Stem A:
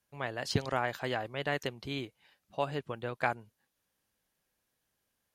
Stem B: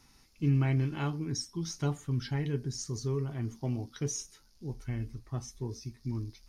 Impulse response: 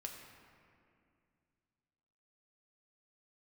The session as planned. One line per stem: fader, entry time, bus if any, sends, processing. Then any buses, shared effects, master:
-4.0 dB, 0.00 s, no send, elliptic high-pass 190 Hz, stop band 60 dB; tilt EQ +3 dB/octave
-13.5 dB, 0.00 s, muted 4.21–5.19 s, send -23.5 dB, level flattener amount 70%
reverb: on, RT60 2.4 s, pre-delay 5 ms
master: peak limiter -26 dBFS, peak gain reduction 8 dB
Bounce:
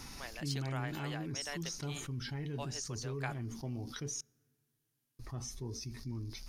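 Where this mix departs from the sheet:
stem A -4.0 dB -> -10.5 dB; master: missing peak limiter -26 dBFS, peak gain reduction 8 dB

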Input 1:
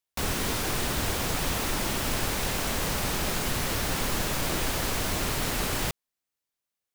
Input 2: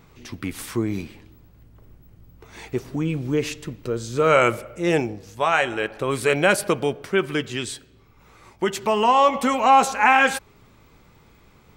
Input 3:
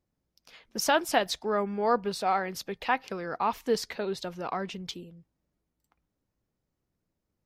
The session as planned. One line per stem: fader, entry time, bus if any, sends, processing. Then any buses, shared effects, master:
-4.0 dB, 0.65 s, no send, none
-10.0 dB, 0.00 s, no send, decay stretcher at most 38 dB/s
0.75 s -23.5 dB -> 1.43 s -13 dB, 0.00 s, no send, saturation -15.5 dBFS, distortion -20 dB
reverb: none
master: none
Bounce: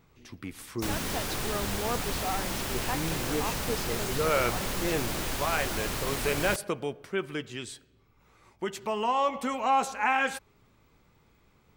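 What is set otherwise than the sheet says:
stem 2: missing decay stretcher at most 38 dB/s; stem 3 -23.5 dB -> -17.0 dB

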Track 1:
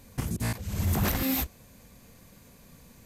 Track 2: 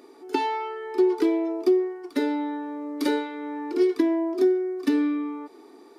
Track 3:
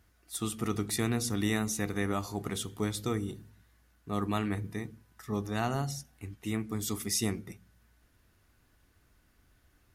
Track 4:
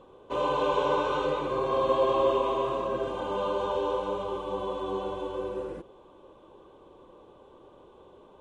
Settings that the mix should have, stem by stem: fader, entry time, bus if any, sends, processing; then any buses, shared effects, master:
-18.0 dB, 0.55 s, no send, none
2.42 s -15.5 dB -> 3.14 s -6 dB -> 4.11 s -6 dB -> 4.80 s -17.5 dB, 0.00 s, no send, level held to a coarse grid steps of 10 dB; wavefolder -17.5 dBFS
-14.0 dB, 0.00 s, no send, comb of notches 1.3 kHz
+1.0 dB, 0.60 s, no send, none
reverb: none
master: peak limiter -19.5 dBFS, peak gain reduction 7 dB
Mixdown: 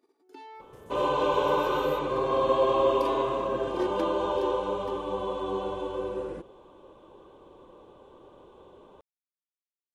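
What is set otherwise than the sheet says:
stem 1 -18.0 dB -> -25.0 dB; stem 3: muted; master: missing peak limiter -19.5 dBFS, peak gain reduction 7 dB

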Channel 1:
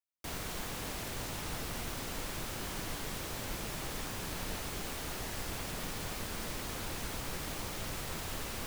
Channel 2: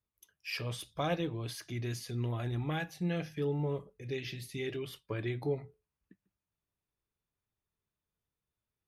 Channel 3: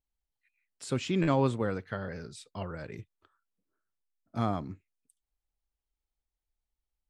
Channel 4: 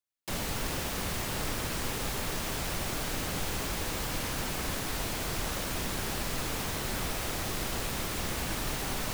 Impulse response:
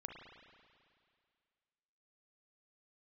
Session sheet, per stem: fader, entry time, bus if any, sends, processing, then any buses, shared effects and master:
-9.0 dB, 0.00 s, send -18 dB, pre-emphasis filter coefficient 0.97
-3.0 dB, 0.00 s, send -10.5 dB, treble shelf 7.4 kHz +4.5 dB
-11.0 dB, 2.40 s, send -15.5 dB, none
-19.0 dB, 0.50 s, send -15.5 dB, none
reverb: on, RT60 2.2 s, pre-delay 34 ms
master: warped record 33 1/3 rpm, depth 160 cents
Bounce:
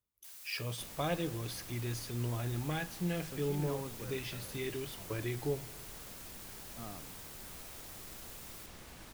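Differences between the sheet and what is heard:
stem 3 -11.0 dB -> -18.0 dB; master: missing warped record 33 1/3 rpm, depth 160 cents

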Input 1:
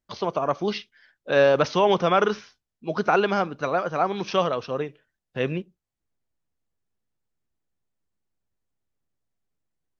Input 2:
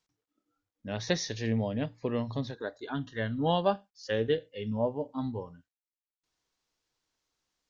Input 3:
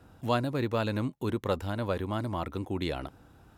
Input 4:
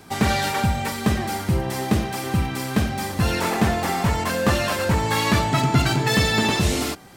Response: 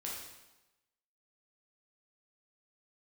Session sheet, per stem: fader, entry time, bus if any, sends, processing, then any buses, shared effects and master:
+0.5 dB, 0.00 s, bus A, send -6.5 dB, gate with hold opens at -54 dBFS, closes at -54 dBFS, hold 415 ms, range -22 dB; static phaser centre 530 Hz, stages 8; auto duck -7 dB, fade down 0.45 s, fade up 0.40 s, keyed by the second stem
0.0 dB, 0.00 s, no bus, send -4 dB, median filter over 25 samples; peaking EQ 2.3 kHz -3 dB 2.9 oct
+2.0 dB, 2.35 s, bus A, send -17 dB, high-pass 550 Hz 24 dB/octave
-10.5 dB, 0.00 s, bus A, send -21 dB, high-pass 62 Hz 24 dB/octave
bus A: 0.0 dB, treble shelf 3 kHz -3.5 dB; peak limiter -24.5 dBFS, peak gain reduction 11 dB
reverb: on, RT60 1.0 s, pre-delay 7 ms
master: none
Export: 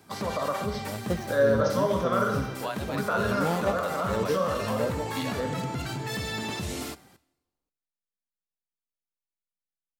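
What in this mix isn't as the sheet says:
stem 2: send off; master: extra treble shelf 6.6 kHz +6 dB

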